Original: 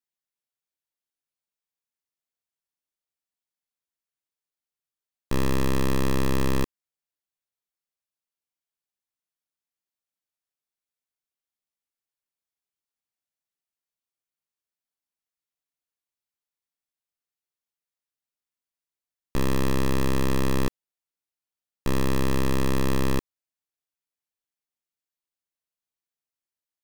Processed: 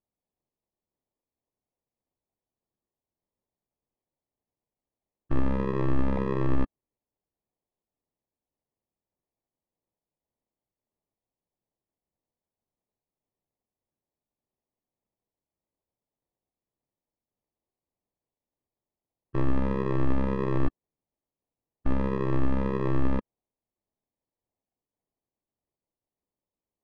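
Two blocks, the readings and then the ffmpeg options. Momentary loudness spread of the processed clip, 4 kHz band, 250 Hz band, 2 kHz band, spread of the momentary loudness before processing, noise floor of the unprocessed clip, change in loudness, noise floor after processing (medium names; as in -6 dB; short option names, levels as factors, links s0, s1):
6 LU, under -15 dB, -2.0 dB, -7.5 dB, 6 LU, under -85 dBFS, -2.5 dB, under -85 dBFS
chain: -af "afftfilt=real='re*pow(10,19/40*sin(2*PI*(0.74*log(max(b,1)*sr/1024/100)/log(2)-(-1.7)*(pts-256)/sr)))':imag='im*pow(10,19/40*sin(2*PI*(0.74*log(max(b,1)*sr/1024/100)/log(2)-(-1.7)*(pts-256)/sr)))':win_size=1024:overlap=0.75,acrusher=samples=30:mix=1:aa=0.000001,lowpass=1500,volume=0.531"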